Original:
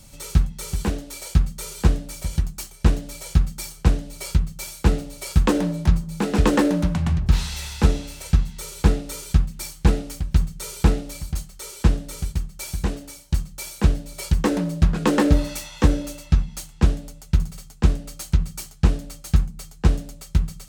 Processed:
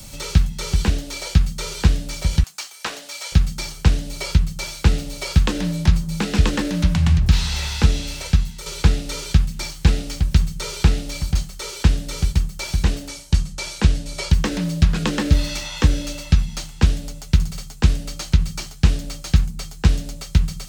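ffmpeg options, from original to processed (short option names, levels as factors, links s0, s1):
-filter_complex "[0:a]asettb=1/sr,asplit=3[s0][s1][s2];[s0]atrim=end=2.434[s3];[s1]atrim=start=2.43:end=3.32,asetpts=PTS-STARTPTS,afade=t=in:d=0.004:c=qsin,afade=t=out:st=0.886:d=0.004:c=qsin,highpass=890[s4];[s2]atrim=start=3.316[s5];[s3][s4]acrossfade=d=0.004:c1=hsin:c2=qsin[s6];[s6][s5]acrossfade=d=0.004:c1=qsin:c2=hsin,asettb=1/sr,asplit=3[s7][s8][s9];[s7]atrim=end=13.084[s10];[s8]atrim=start=13.08:end=14.31,asetpts=PTS-STARTPTS,afade=t=in:d=0.004:c=qsin,afade=t=out:st=1.226:d=0.004:c=qsin,lowpass=8700[s11];[s9]atrim=start=14.306[s12];[s10][s11]acrossfade=d=0.004:c1=hsin:c2=qsin[s13];[s13][s12]acrossfade=d=0.004:c1=qsin:c2=hsin,asplit=2[s14][s15];[s14]atrim=end=8.66,asetpts=PTS-STARTPTS,afade=t=out:st=8.14:d=0.52:silence=0.334965[s16];[s15]atrim=start=8.66,asetpts=PTS-STARTPTS,afade=t=in:d=0.004:c=hsin:silence=0.334965[s17];[s16][s17]concat=n=2:v=0:a=1,acrossover=split=150|1700|6300[s18][s19][s20][s21];[s18]acompressor=threshold=0.112:ratio=4[s22];[s19]acompressor=threshold=0.0158:ratio=4[s23];[s20]acompressor=threshold=0.0126:ratio=4[s24];[s21]acompressor=threshold=0.00501:ratio=4[s25];[s22][s23][s24][s25]amix=inputs=4:normalize=0,aemphasis=mode=production:type=50kf,acrossover=split=5900[s26][s27];[s27]acompressor=threshold=0.002:ratio=4:attack=1:release=60[s28];[s26][s28]amix=inputs=2:normalize=0,volume=2.51"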